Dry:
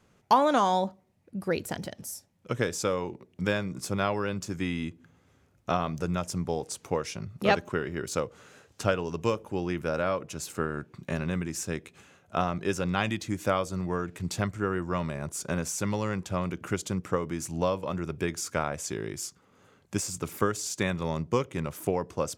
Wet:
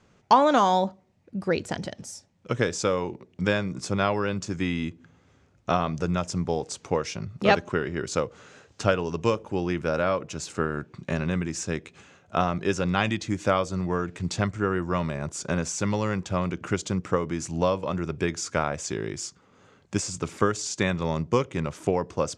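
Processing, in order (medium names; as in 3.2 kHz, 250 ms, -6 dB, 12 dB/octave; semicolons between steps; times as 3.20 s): low-pass 7.6 kHz 24 dB/octave; trim +3.5 dB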